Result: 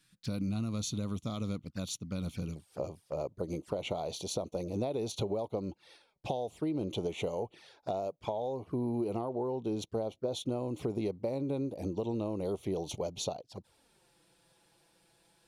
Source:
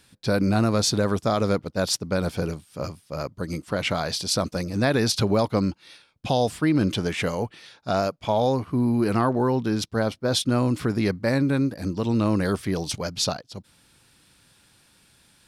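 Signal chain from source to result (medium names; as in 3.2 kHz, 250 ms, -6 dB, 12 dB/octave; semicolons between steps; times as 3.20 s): high-order bell 570 Hz -9.5 dB, from 2.55 s +9 dB; compression 16:1, threshold -21 dBFS, peak gain reduction 13 dB; touch-sensitive flanger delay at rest 6.8 ms, full sweep at -26 dBFS; trim -8 dB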